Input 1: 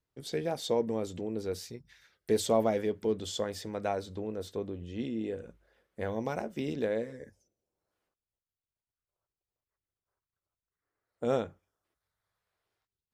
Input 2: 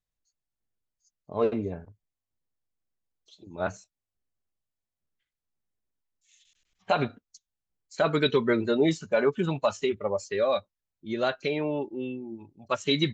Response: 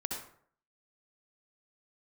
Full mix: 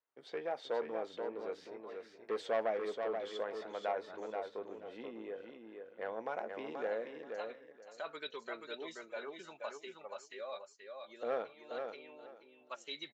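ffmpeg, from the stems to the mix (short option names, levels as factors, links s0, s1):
-filter_complex "[0:a]lowpass=2000,asoftclip=type=tanh:threshold=0.0794,volume=1,asplit=3[s0][s1][s2];[s1]volume=0.531[s3];[1:a]volume=0.158,asplit=2[s4][s5];[s5]volume=0.596[s6];[s2]apad=whole_len=579121[s7];[s4][s7]sidechaincompress=threshold=0.00708:ratio=8:attack=16:release=390[s8];[s3][s6]amix=inputs=2:normalize=0,aecho=0:1:480|960|1440:1|0.2|0.04[s9];[s0][s8][s9]amix=inputs=3:normalize=0,highpass=610"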